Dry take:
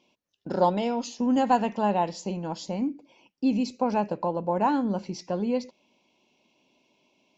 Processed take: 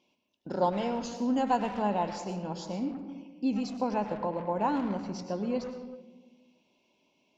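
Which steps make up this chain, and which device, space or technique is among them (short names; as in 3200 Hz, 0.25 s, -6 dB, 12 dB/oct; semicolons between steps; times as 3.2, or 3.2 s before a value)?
saturated reverb return (on a send at -4.5 dB: reverb RT60 1.2 s, pre-delay 93 ms + soft clip -26 dBFS, distortion -9 dB); on the sum: gain -5 dB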